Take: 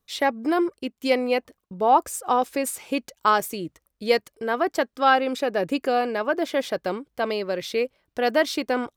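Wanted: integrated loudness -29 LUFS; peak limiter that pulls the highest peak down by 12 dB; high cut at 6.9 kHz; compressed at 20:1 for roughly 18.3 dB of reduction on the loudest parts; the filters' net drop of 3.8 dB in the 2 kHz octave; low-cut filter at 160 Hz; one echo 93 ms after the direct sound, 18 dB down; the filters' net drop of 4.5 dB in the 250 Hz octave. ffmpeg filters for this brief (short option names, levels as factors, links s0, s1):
-af "highpass=160,lowpass=6900,equalizer=f=250:t=o:g=-5,equalizer=f=2000:t=o:g=-5,acompressor=threshold=0.0251:ratio=20,alimiter=level_in=2.11:limit=0.0631:level=0:latency=1,volume=0.473,aecho=1:1:93:0.126,volume=3.98"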